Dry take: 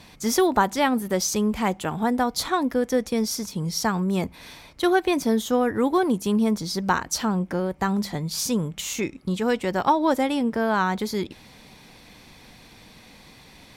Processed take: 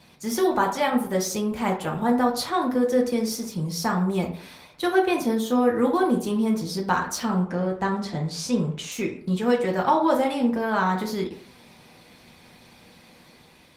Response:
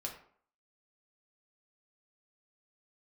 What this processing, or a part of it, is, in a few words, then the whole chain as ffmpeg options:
far-field microphone of a smart speaker: -filter_complex "[0:a]asettb=1/sr,asplit=3[a][b][c];[a]atrim=end=7.454[d];[b]atrim=start=7.45:end=8.92,asetpts=PTS-STARTPTS,afade=t=in:d=0.004:c=qsin,afade=t=out:st=1.466:d=0.004:c=qsin,lowpass=7.2k[e];[c]atrim=start=8.916[f];[d][e]acrossfade=d=0.004:c1=hsin:c2=qsin[g];[g][f]acrossfade=d=0.004:c1=qsin:c2=hsin[h];[1:a]atrim=start_sample=2205[i];[h][i]afir=irnorm=-1:irlink=0,highpass=94,dynaudnorm=f=350:g=5:m=3dB,volume=-2dB" -ar 48000 -c:a libopus -b:a 24k

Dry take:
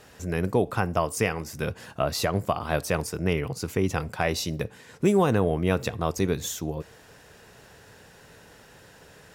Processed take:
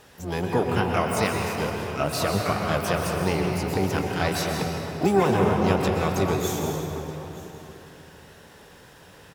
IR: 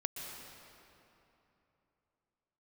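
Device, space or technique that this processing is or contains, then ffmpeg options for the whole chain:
shimmer-style reverb: -filter_complex "[0:a]bandreject=f=7k:w=28,asplit=2[a][b];[b]asetrate=88200,aresample=44100,atempo=0.5,volume=-6dB[c];[a][c]amix=inputs=2:normalize=0[d];[1:a]atrim=start_sample=2205[e];[d][e]afir=irnorm=-1:irlink=0,aecho=1:1:921:0.106"

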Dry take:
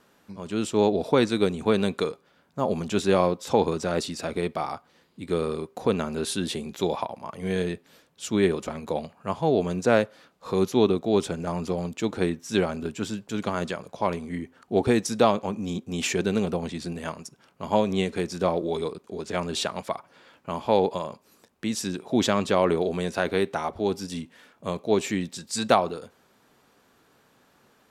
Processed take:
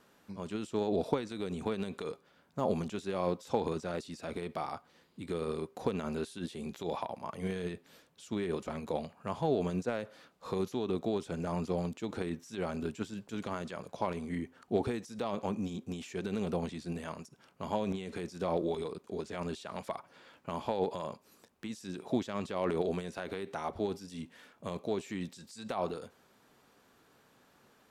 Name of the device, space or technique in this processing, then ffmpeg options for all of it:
de-esser from a sidechain: -filter_complex "[0:a]asplit=2[a][b];[b]highpass=4.5k,apad=whole_len=1230685[c];[a][c]sidechaincompress=threshold=-50dB:ratio=4:attack=2.1:release=52,volume=-3.5dB"

